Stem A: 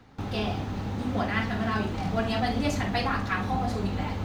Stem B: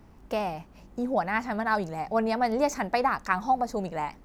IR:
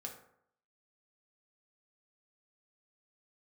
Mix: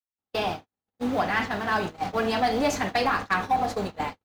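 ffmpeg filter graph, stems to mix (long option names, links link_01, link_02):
-filter_complex "[0:a]bass=frequency=250:gain=-13,treble=frequency=4000:gain=1,volume=1dB,asplit=2[link_01][link_02];[link_02]volume=-8dB[link_03];[1:a]bandreject=frequency=50:width_type=h:width=6,bandreject=frequency=100:width_type=h:width=6,bandreject=frequency=150:width_type=h:width=6,acrusher=bits=8:mode=log:mix=0:aa=0.000001,adelay=14,volume=-0.5dB,asplit=2[link_04][link_05];[link_05]volume=-13.5dB[link_06];[2:a]atrim=start_sample=2205[link_07];[link_03][link_06]amix=inputs=2:normalize=0[link_08];[link_08][link_07]afir=irnorm=-1:irlink=0[link_09];[link_01][link_04][link_09]amix=inputs=3:normalize=0,agate=range=-60dB:threshold=-28dB:ratio=16:detection=peak,asoftclip=type=tanh:threshold=-14.5dB"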